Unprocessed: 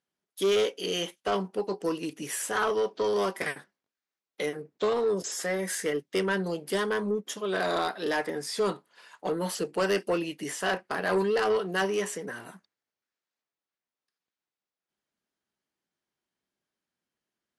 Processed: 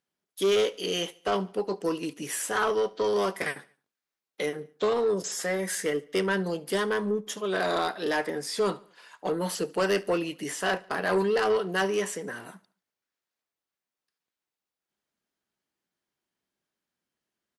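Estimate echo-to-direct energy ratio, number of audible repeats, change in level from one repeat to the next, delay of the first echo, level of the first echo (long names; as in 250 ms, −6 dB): −22.0 dB, 2, −6.5 dB, 72 ms, −23.0 dB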